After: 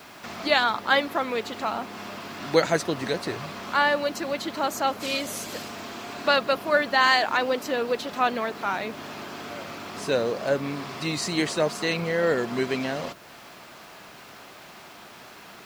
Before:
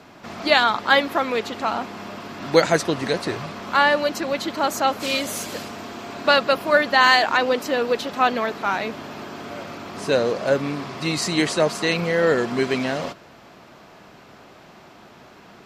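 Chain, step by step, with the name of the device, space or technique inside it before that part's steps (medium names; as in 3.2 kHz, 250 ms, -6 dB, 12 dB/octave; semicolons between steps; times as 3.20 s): noise-reduction cassette on a plain deck (tape noise reduction on one side only encoder only; wow and flutter 29 cents; white noise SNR 31 dB); trim -4.5 dB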